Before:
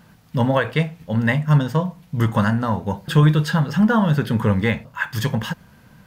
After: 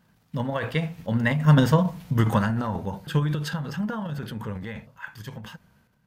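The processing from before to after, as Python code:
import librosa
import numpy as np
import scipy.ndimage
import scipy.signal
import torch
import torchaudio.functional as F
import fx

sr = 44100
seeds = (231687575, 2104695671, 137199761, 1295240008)

y = fx.doppler_pass(x, sr, speed_mps=6, closest_m=3.0, pass_at_s=1.8)
y = fx.transient(y, sr, attack_db=6, sustain_db=10)
y = y * 10.0 ** (-3.0 / 20.0)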